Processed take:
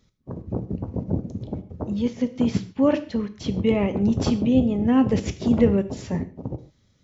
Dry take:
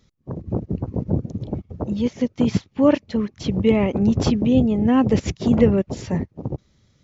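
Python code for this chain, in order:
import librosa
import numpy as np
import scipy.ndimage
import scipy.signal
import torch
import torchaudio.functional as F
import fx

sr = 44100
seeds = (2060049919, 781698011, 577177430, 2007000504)

y = fx.rev_gated(x, sr, seeds[0], gate_ms=170, shape='falling', drr_db=9.5)
y = y * librosa.db_to_amplitude(-3.5)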